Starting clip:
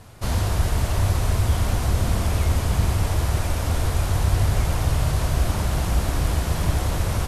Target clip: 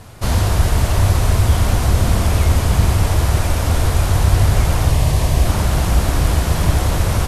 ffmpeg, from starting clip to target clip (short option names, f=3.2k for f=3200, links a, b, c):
-filter_complex "[0:a]asettb=1/sr,asplit=3[a][b][c];[a]atrim=end=4.904[d];[b]atrim=start=4.9:end=5.46,asetpts=PTS-STARTPTS,afade=t=in:d=0.004:c=qsin,afade=t=out:st=0.556:d=0.004:c=qsin,equalizer=f=1.4k:w=6:g=-13[e];[c]atrim=start=5.456[f];[d][e]acrossfade=d=0.004:c1=hsin:c2=qsin[g];[g][f]acrossfade=d=0.004:c1=qsin:c2=hsin,volume=6.5dB"